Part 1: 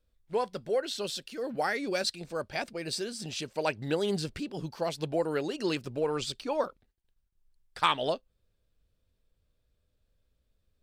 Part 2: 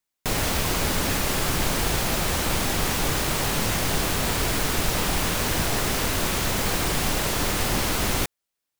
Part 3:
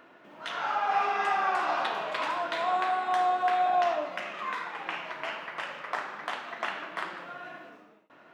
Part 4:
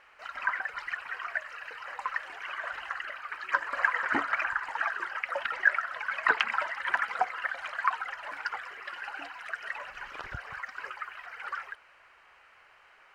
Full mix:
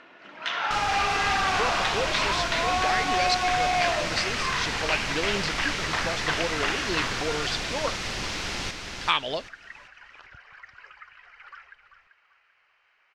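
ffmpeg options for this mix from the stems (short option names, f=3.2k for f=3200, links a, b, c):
-filter_complex "[0:a]adelay=1250,volume=-2dB[a];[1:a]adelay=450,volume=-11dB,asplit=2[b][c];[c]volume=-5dB[d];[2:a]volume=24.5dB,asoftclip=hard,volume=-24.5dB,volume=1dB[e];[3:a]volume=-13dB,asplit=2[f][g];[g]volume=-10.5dB[h];[d][h]amix=inputs=2:normalize=0,aecho=0:1:389|778|1167|1556:1|0.3|0.09|0.027[i];[a][b][e][f][i]amix=inputs=5:normalize=0,lowpass=f=5.6k:t=q:w=1.7,equalizer=f=2.4k:w=0.98:g=6.5"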